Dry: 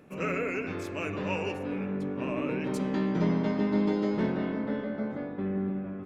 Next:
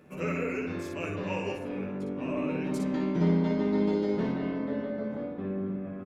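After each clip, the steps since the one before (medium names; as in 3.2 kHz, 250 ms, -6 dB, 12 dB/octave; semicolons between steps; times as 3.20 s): dynamic bell 1.9 kHz, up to -3 dB, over -47 dBFS, Q 0.71; on a send: early reflections 12 ms -4.5 dB, 59 ms -3.5 dB; on the sum: trim -2.5 dB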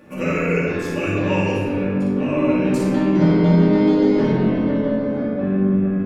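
simulated room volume 1100 m³, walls mixed, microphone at 2.4 m; trim +7 dB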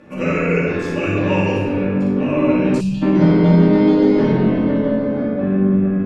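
time-frequency box 2.80–3.03 s, 220–2400 Hz -22 dB; distance through air 58 m; trim +2.5 dB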